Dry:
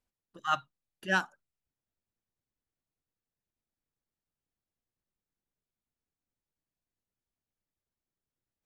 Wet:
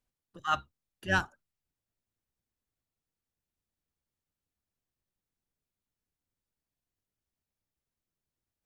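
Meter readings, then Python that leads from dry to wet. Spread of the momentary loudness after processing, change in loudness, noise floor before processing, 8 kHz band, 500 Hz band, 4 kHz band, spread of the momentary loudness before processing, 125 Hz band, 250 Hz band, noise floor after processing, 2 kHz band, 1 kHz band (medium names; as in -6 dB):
15 LU, 0.0 dB, under -85 dBFS, 0.0 dB, 0.0 dB, 0.0 dB, 15 LU, +5.0 dB, +0.5 dB, under -85 dBFS, 0.0 dB, 0.0 dB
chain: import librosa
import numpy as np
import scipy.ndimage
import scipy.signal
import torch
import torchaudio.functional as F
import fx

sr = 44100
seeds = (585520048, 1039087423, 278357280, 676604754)

y = fx.octave_divider(x, sr, octaves=1, level_db=0.0)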